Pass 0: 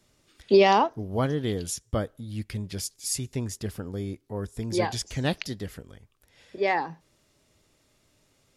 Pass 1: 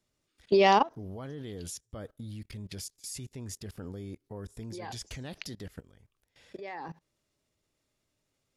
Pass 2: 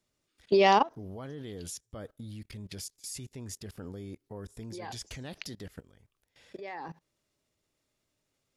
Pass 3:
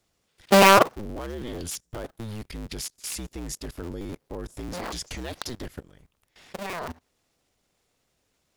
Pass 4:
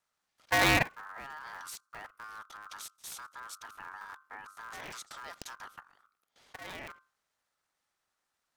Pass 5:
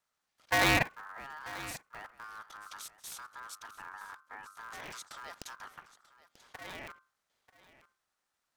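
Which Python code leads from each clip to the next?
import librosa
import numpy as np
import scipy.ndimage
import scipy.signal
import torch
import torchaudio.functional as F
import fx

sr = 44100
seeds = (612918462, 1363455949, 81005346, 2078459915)

y1 = fx.level_steps(x, sr, step_db=20)
y2 = fx.low_shelf(y1, sr, hz=140.0, db=-3.0)
y3 = fx.cycle_switch(y2, sr, every=2, mode='inverted')
y3 = y3 * 10.0 ** (7.0 / 20.0)
y4 = fx.hum_notches(y3, sr, base_hz=50, count=5)
y4 = y4 * np.sin(2.0 * np.pi * 1300.0 * np.arange(len(y4)) / sr)
y4 = y4 * 10.0 ** (-7.5 / 20.0)
y5 = y4 + 10.0 ** (-17.5 / 20.0) * np.pad(y4, (int(938 * sr / 1000.0), 0))[:len(y4)]
y5 = y5 * 10.0 ** (-1.0 / 20.0)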